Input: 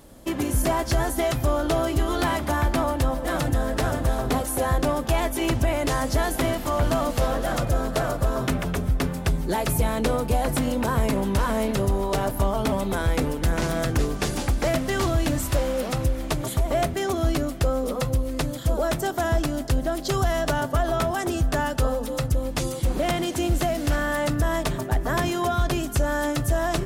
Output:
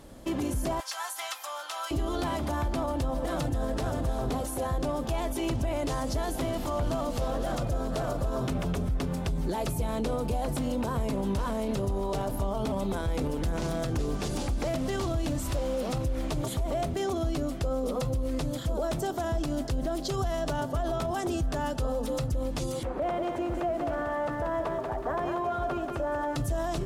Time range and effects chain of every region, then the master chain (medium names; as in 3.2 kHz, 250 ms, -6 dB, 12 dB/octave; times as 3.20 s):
0.80–1.91 s: high-pass 990 Hz 24 dB/octave + comb 3.8 ms, depth 45%
22.83–26.36 s: three-band isolator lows -14 dB, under 360 Hz, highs -21 dB, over 2 kHz + bit-crushed delay 185 ms, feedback 35%, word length 9-bit, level -5 dB
whole clip: dynamic bell 1.8 kHz, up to -7 dB, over -43 dBFS, Q 1.3; peak limiter -22 dBFS; treble shelf 11 kHz -11 dB